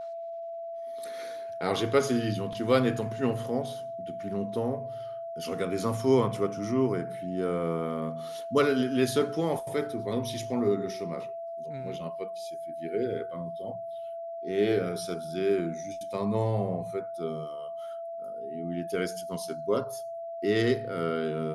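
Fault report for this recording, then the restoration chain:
tone 670 Hz -35 dBFS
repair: notch 670 Hz, Q 30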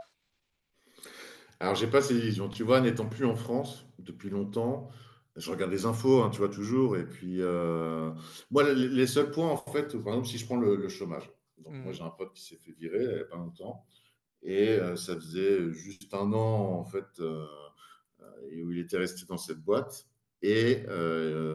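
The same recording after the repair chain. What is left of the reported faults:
none

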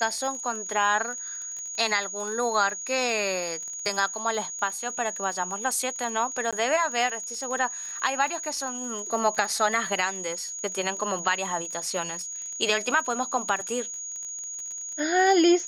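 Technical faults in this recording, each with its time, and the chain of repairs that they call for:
crackle 27/s -33 dBFS
tone 6700 Hz -33 dBFS
6.51–6.53 gap 16 ms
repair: de-click; notch 6700 Hz, Q 30; interpolate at 6.51, 16 ms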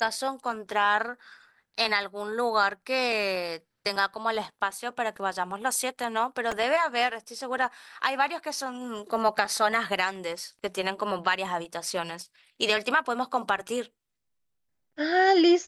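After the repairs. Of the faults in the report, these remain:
none

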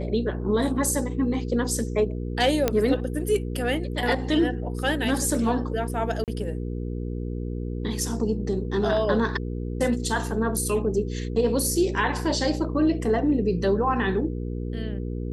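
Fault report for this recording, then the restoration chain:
hum 60 Hz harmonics 8 -30 dBFS
2.68 pop -7 dBFS
6.24–6.28 gap 38 ms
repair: de-click; de-hum 60 Hz, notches 8; interpolate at 6.24, 38 ms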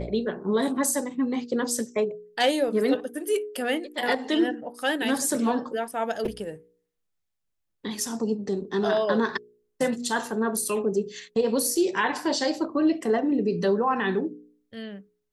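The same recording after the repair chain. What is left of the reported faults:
none

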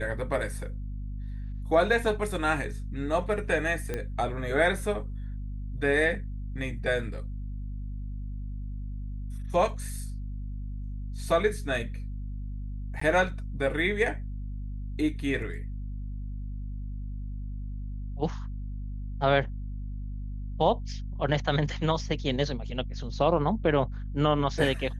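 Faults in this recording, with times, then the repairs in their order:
hum 50 Hz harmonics 5 -35 dBFS
3.94 pop -18 dBFS
13–13.01 gap 14 ms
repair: de-click; de-hum 50 Hz, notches 5; interpolate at 13, 14 ms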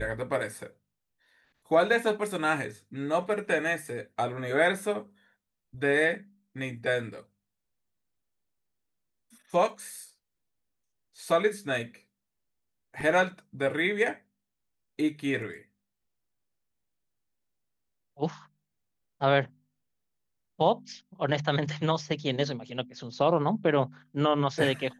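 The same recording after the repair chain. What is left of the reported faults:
none

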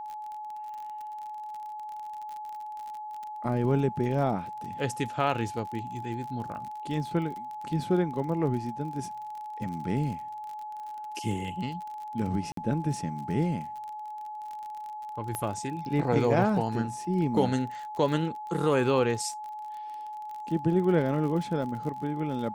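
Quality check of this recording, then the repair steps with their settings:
crackle 40/s -36 dBFS
tone 850 Hz -36 dBFS
12.52–12.57 gap 53 ms
15.35 pop -18 dBFS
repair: de-click; notch 850 Hz, Q 30; interpolate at 12.52, 53 ms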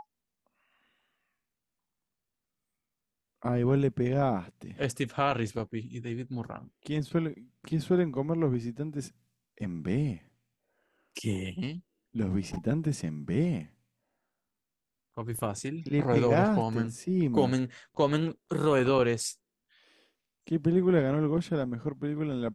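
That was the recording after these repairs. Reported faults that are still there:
15.35 pop

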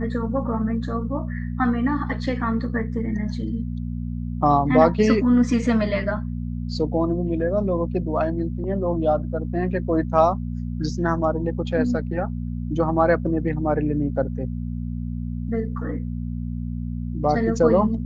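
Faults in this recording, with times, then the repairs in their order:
hum 60 Hz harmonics 4 -28 dBFS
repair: de-hum 60 Hz, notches 4

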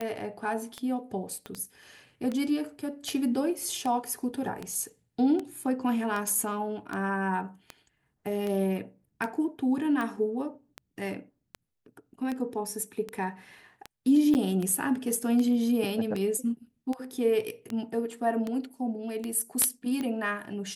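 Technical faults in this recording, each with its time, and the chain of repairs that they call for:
tick 78 rpm -20 dBFS
1.46 pop -24 dBFS
14.34–14.35 gap 9.3 ms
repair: de-click; interpolate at 14.34, 9.3 ms

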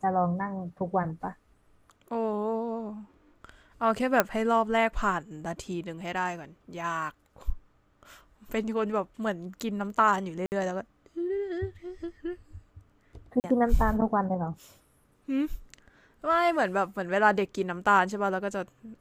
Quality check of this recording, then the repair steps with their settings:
4.2 pop -6 dBFS
10.46–10.52 gap 59 ms
13.4–13.44 gap 39 ms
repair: de-click; interpolate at 10.46, 59 ms; interpolate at 13.4, 39 ms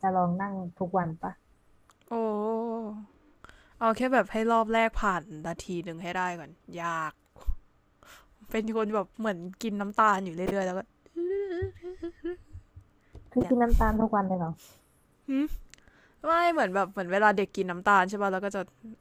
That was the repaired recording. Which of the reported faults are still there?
none

